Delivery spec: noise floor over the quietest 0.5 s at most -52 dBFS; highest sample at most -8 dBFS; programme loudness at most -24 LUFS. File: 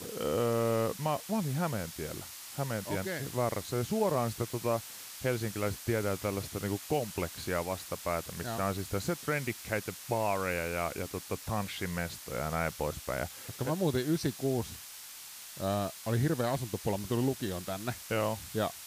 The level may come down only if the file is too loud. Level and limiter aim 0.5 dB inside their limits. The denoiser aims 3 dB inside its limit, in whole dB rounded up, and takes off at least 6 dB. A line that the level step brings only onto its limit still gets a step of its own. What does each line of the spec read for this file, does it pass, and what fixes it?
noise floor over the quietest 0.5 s -47 dBFS: fail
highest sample -17.5 dBFS: pass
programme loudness -33.5 LUFS: pass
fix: noise reduction 8 dB, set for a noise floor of -47 dBFS

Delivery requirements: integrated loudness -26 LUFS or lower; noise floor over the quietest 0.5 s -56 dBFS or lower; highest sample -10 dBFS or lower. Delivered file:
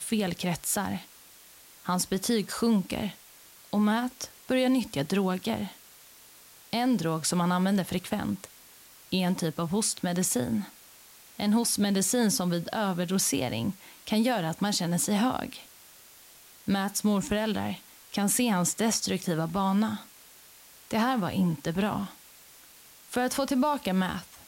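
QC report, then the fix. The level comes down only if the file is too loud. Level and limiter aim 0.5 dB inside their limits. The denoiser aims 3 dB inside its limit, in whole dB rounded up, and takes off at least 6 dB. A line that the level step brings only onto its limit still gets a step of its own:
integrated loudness -28.0 LUFS: pass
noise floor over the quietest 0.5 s -53 dBFS: fail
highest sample -14.5 dBFS: pass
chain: noise reduction 6 dB, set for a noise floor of -53 dBFS

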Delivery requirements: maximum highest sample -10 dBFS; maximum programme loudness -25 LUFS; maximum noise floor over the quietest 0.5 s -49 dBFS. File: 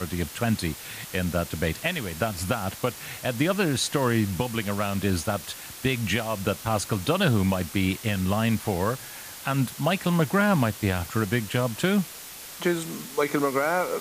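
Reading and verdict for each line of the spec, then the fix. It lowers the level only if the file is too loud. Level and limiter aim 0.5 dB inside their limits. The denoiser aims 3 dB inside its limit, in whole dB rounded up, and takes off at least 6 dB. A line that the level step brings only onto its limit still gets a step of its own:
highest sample -11.0 dBFS: pass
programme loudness -26.0 LUFS: pass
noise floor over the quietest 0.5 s -41 dBFS: fail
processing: noise reduction 11 dB, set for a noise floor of -41 dBFS

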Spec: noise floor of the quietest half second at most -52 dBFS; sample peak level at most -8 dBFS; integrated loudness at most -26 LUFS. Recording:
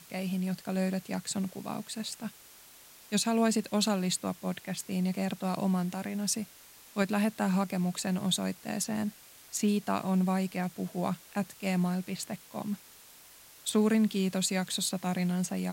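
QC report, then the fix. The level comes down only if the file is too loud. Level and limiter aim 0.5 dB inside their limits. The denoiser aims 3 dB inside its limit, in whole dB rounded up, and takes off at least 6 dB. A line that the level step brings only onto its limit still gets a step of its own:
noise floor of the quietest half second -54 dBFS: pass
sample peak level -16.0 dBFS: pass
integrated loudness -31.5 LUFS: pass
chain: none needed

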